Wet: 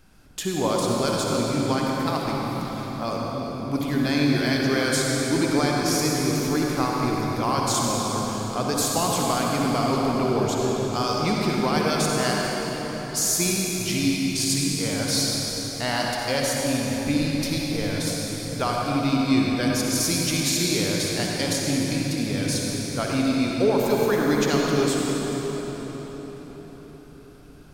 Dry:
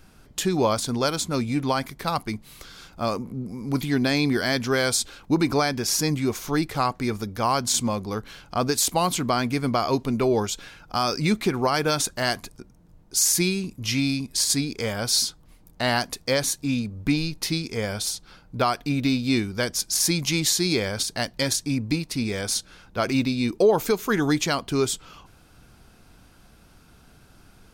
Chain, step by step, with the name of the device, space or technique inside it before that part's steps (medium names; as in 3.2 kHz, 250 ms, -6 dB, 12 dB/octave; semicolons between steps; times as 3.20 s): cathedral (reverberation RT60 5.2 s, pre-delay 52 ms, DRR -3 dB); trim -4 dB